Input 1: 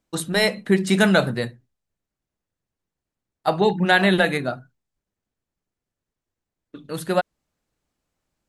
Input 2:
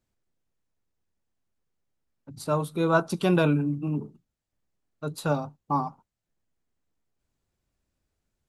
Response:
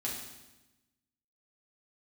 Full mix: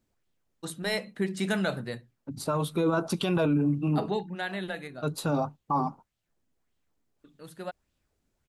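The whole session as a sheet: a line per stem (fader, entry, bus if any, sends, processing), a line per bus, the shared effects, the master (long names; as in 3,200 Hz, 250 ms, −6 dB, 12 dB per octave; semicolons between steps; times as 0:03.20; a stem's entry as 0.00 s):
0:04.11 −10.5 dB → 0:04.34 −17 dB, 0.50 s, no send, no processing
+2.0 dB, 0.00 s, no send, auto-filter bell 1.7 Hz 240–3,500 Hz +8 dB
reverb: not used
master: brickwall limiter −18 dBFS, peak gain reduction 11 dB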